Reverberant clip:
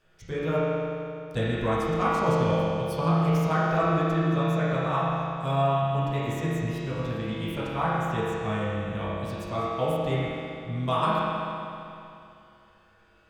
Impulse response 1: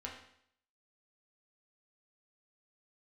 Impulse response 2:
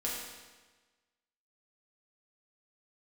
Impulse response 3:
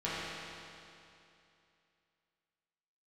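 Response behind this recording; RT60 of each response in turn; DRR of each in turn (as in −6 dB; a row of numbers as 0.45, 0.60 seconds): 3; 0.65, 1.3, 2.7 seconds; −2.5, −5.5, −10.5 decibels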